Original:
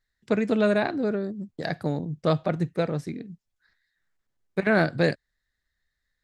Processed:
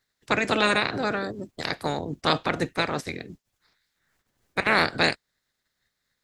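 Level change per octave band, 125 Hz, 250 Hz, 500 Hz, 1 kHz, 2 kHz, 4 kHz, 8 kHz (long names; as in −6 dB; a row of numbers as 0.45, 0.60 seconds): −6.0 dB, −4.5 dB, −3.0 dB, +6.0 dB, +5.5 dB, +11.5 dB, can't be measured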